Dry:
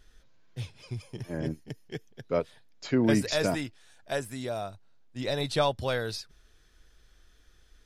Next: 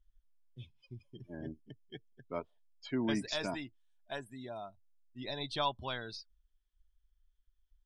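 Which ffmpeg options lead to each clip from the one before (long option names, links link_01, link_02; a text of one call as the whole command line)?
ffmpeg -i in.wav -af "afftdn=noise_reduction=25:noise_floor=-40,equalizer=frequency=100:width_type=o:width=0.33:gain=-11,equalizer=frequency=160:width_type=o:width=0.33:gain=-6,equalizer=frequency=500:width_type=o:width=0.33:gain=-11,equalizer=frequency=1000:width_type=o:width=0.33:gain=7,equalizer=frequency=3150:width_type=o:width=0.33:gain=9,volume=-8dB" out.wav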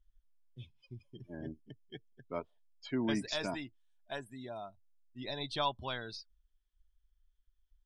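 ffmpeg -i in.wav -af anull out.wav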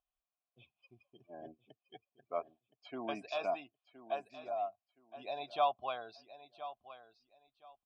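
ffmpeg -i in.wav -filter_complex "[0:a]asplit=3[link_01][link_02][link_03];[link_01]bandpass=frequency=730:width_type=q:width=8,volume=0dB[link_04];[link_02]bandpass=frequency=1090:width_type=q:width=8,volume=-6dB[link_05];[link_03]bandpass=frequency=2440:width_type=q:width=8,volume=-9dB[link_06];[link_04][link_05][link_06]amix=inputs=3:normalize=0,aecho=1:1:1019|2038:0.2|0.0419,volume=11dB" out.wav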